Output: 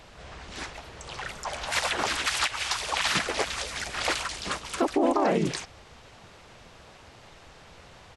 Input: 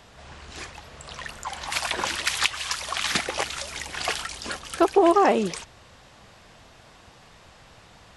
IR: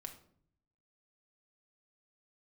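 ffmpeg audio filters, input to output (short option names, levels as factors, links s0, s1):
-filter_complex "[0:a]asplit=3[s0][s1][s2];[s1]asetrate=33038,aresample=44100,atempo=1.33484,volume=0.891[s3];[s2]asetrate=37084,aresample=44100,atempo=1.18921,volume=0.794[s4];[s0][s3][s4]amix=inputs=3:normalize=0,alimiter=limit=0.282:level=0:latency=1:release=75,volume=0.708"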